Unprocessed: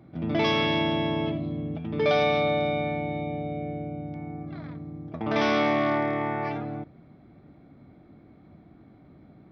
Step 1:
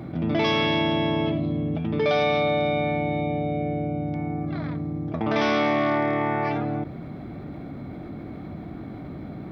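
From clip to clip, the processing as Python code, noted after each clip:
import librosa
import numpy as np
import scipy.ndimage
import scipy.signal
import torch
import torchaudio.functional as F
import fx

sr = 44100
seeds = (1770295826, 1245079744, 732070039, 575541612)

y = fx.env_flatten(x, sr, amount_pct=50)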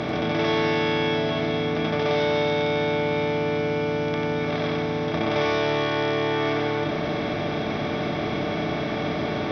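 y = fx.bin_compress(x, sr, power=0.2)
y = y + 10.0 ** (-4.0 / 20.0) * np.pad(y, (int(93 * sr / 1000.0), 0))[:len(y)]
y = y * 10.0 ** (-7.0 / 20.0)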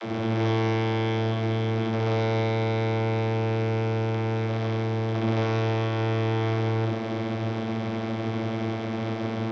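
y = fx.envelope_flatten(x, sr, power=0.6)
y = np.sign(y) * np.maximum(np.abs(y) - 10.0 ** (-45.5 / 20.0), 0.0)
y = fx.vocoder(y, sr, bands=32, carrier='saw', carrier_hz=112.0)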